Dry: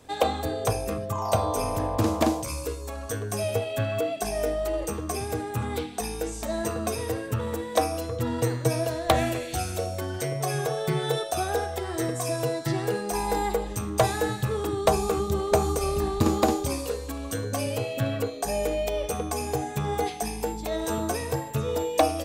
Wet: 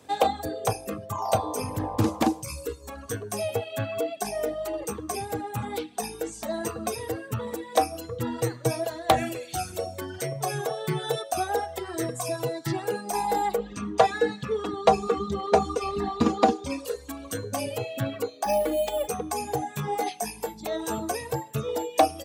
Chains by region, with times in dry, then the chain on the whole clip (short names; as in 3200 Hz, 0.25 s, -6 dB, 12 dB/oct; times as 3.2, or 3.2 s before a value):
1.59–3.16 tone controls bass +5 dB, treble -1 dB + notch 650 Hz, Q 8.8
13.58–16.85 LPF 4700 Hz + comb 4.2 ms, depth 76%
18.43–19.08 comb 3.5 ms, depth 99% + careless resampling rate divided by 4×, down filtered, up hold
19.75–20.61 low shelf 350 Hz -4 dB + doubler 20 ms -5 dB
whole clip: HPF 110 Hz 12 dB/oct; reverb removal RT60 1 s; dynamic EQ 810 Hz, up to +6 dB, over -44 dBFS, Q 7.2